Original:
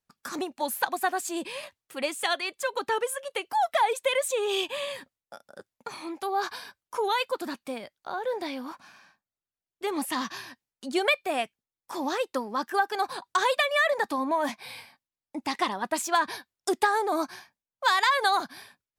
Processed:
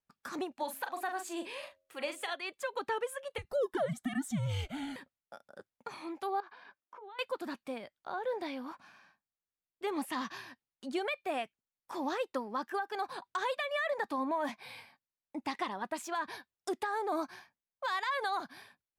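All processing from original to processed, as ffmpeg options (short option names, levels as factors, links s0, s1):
-filter_complex "[0:a]asettb=1/sr,asplit=3[s0][s1][s2];[s0]atrim=end=0.634[s3];[s1]atrim=start=0.63:end=2.34,asetpts=PTS-STARTPTS,afade=t=in:d=0.004:c=qsin,afade=t=out:st=1.706:d=0.004:c=qsin,equalizer=f=160:t=o:w=1.5:g=-9,asplit=2[s4][s5];[s5]adelay=41,volume=0.422[s6];[s4][s6]amix=inputs=2:normalize=0,atrim=end_sample=75411,bandreject=f=90.2:t=h:w=4,bandreject=f=180.4:t=h:w=4,bandreject=f=270.6:t=h:w=4,bandreject=f=360.8:t=h:w=4,bandreject=f=451:t=h:w=4,bandreject=f=541.2:t=h:w=4,bandreject=f=631.4:t=h:w=4[s7];[s2]atrim=start=2.336[s8];[s3][s7]acrossfade=d=0.004:c1=hsin:c2=qsin[s9];[s9][s8]acrossfade=d=0.004:c1=qsin:c2=hsin,asettb=1/sr,asplit=3[s10][s11][s12];[s10]atrim=end=3.384[s13];[s11]atrim=start=3.38:end=4.96,asetpts=PTS-STARTPTS,afade=t=in:d=0.004:c=qsin,afade=t=out:st=1.576:d=0.004:c=qsin,equalizer=f=2900:w=2.8:g=-12.5,afreqshift=-290[s14];[s12]atrim=start=4.956[s15];[s13][s14]acrossfade=d=0.004:c1=hsin:c2=qsin[s16];[s16][s15]acrossfade=d=0.004:c1=qsin:c2=hsin,asettb=1/sr,asplit=3[s17][s18][s19];[s17]atrim=end=6.404[s20];[s18]atrim=start=6.4:end=7.19,asetpts=PTS-STARTPTS,afade=t=in:d=0.004:c=qsin,afade=t=out:st=0.786:d=0.004:c=qsin,acompressor=threshold=0.00794:ratio=6:attack=3.2:release=140:knee=1:detection=peak,highpass=230,lowpass=2600,bandreject=f=460:w=13[s21];[s19]atrim=start=7.186[s22];[s20][s21]acrossfade=d=0.004:c1=hsin:c2=qsin[s23];[s23][s22]acrossfade=d=0.004:c1=qsin:c2=hsin,bass=f=250:g=0,treble=f=4000:g=-7,alimiter=limit=0.1:level=0:latency=1:release=197,volume=0.562"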